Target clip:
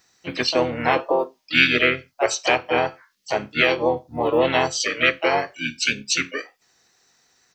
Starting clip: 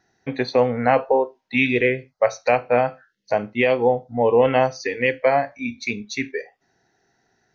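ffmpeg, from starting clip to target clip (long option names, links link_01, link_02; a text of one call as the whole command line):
ffmpeg -i in.wav -filter_complex "[0:a]crystalizer=i=8:c=0,asplit=3[link_01][link_02][link_03];[link_02]asetrate=29433,aresample=44100,atempo=1.49831,volume=-7dB[link_04];[link_03]asetrate=55563,aresample=44100,atempo=0.793701,volume=-7dB[link_05];[link_01][link_04][link_05]amix=inputs=3:normalize=0,equalizer=frequency=4800:width=4:gain=2.5,volume=-6dB" out.wav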